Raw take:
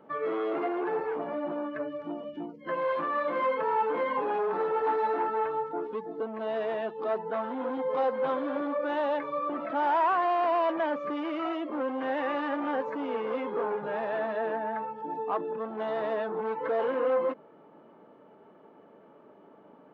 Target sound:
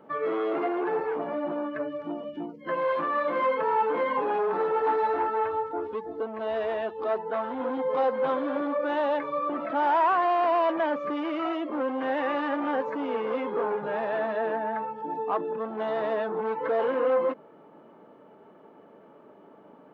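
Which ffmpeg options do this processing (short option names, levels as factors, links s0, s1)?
-filter_complex "[0:a]asettb=1/sr,asplit=3[s0][s1][s2];[s0]atrim=end=5.034[s3];[s1]atrim=start=5.03:end=7.6,asetpts=PTS-STARTPTS,afade=t=in:d=0.004:c=qsin,afade=t=out:st=2.566:d=0.004:c=qsin,lowshelf=f=110:t=q:w=3:g=10.5[s4];[s2]atrim=start=7.596[s5];[s3][s4]acrossfade=d=0.004:c1=hsin:c2=qsin[s6];[s6][s5]acrossfade=d=0.004:c1=qsin:c2=hsin,volume=1.33"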